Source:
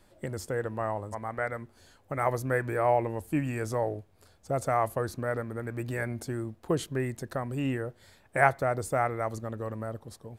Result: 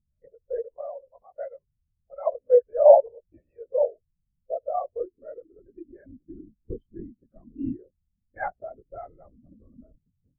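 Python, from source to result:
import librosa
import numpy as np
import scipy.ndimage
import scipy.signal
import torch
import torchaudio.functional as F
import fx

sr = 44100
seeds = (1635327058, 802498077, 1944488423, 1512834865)

y = fx.filter_sweep_highpass(x, sr, from_hz=520.0, to_hz=210.0, start_s=4.24, end_s=6.66, q=3.0)
y = fx.add_hum(y, sr, base_hz=60, snr_db=16)
y = fx.lpc_vocoder(y, sr, seeds[0], excitation='whisper', order=16)
y = fx.spectral_expand(y, sr, expansion=2.5)
y = F.gain(torch.from_numpy(y), 5.0).numpy()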